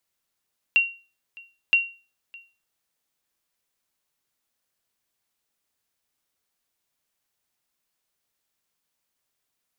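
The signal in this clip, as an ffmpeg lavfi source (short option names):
-f lavfi -i "aevalsrc='0.282*(sin(2*PI*2750*mod(t,0.97))*exp(-6.91*mod(t,0.97)/0.34)+0.0562*sin(2*PI*2750*max(mod(t,0.97)-0.61,0))*exp(-6.91*max(mod(t,0.97)-0.61,0)/0.34))':d=1.94:s=44100"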